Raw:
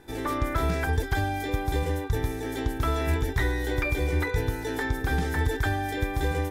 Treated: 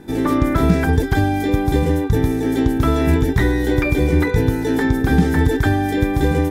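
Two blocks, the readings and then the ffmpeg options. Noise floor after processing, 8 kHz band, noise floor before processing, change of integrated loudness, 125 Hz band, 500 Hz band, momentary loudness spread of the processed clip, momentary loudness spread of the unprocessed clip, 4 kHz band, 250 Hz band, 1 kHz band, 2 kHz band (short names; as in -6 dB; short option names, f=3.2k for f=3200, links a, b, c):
-22 dBFS, +5.5 dB, -34 dBFS, +10.5 dB, +10.0 dB, +10.5 dB, 2 LU, 3 LU, +5.5 dB, +15.5 dB, +7.0 dB, +6.0 dB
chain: -af "equalizer=f=210:t=o:w=1.5:g=14,volume=5.5dB"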